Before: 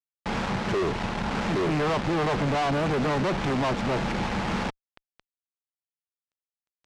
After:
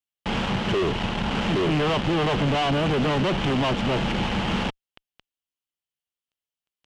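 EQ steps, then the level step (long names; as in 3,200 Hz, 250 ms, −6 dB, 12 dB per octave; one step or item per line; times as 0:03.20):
low-shelf EQ 470 Hz +4 dB
parametric band 3,000 Hz +10.5 dB 0.43 octaves
0.0 dB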